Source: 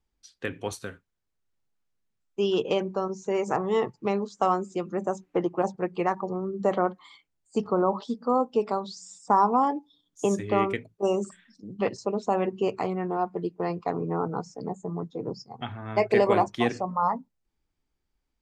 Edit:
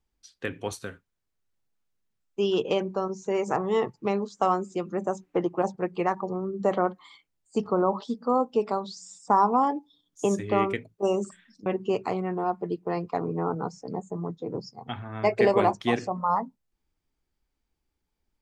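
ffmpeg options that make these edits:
-filter_complex "[0:a]asplit=2[s0][s1];[s0]atrim=end=11.662[s2];[s1]atrim=start=12.388[s3];[s2][s3]acrossfade=d=0.004:c1=hsin:c2=hsin"

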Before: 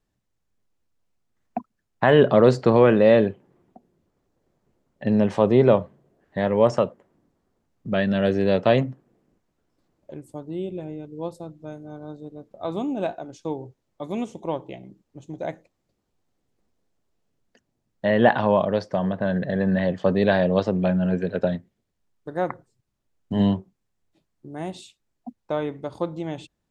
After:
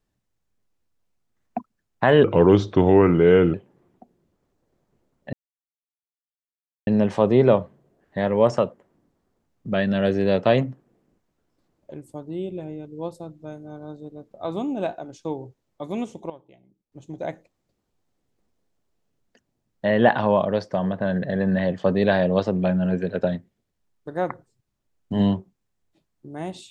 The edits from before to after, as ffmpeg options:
-filter_complex "[0:a]asplit=6[s0][s1][s2][s3][s4][s5];[s0]atrim=end=2.244[s6];[s1]atrim=start=2.24:end=3.28,asetpts=PTS-STARTPTS,asetrate=35280,aresample=44100[s7];[s2]atrim=start=3.276:end=5.07,asetpts=PTS-STARTPTS,afade=t=out:st=1.79:d=0.004:c=hsin,apad=pad_dur=1.54[s8];[s3]atrim=start=5.07:end=14.5,asetpts=PTS-STARTPTS,afade=t=in:d=0.004:c=hsin,afade=t=out:st=9.11:d=0.32:c=log:silence=0.158489[s9];[s4]atrim=start=14.5:end=15.12,asetpts=PTS-STARTPTS,volume=0.158[s10];[s5]atrim=start=15.12,asetpts=PTS-STARTPTS,afade=t=in:d=0.32:c=log:silence=0.158489[s11];[s6][s7]acrossfade=d=0.004:c1=hsin:c2=hsin[s12];[s8][s9][s10][s11]concat=n=4:v=0:a=1[s13];[s12][s13]acrossfade=d=0.004:c1=hsin:c2=hsin"

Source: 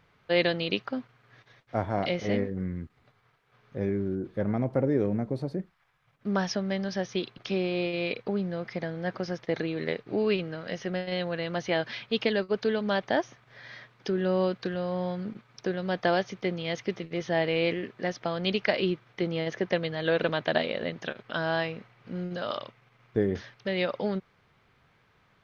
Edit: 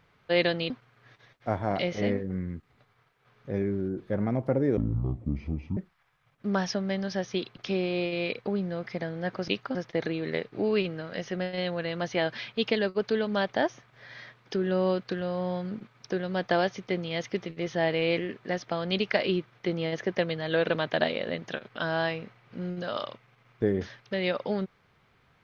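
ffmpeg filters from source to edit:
-filter_complex "[0:a]asplit=6[s0][s1][s2][s3][s4][s5];[s0]atrim=end=0.702[s6];[s1]atrim=start=0.968:end=5.044[s7];[s2]atrim=start=5.04:end=5.58,asetpts=PTS-STARTPTS,asetrate=23814,aresample=44100[s8];[s3]atrim=start=5.576:end=9.292[s9];[s4]atrim=start=0.698:end=0.972[s10];[s5]atrim=start=9.288[s11];[s6][s7]acrossfade=d=0.004:c1=hsin:c2=hsin[s12];[s12][s8]acrossfade=d=0.004:c1=hsin:c2=hsin[s13];[s13][s9]acrossfade=d=0.004:c1=hsin:c2=hsin[s14];[s14][s10]acrossfade=d=0.004:c1=hsin:c2=hsin[s15];[s15][s11]acrossfade=d=0.004:c1=hsin:c2=hsin"

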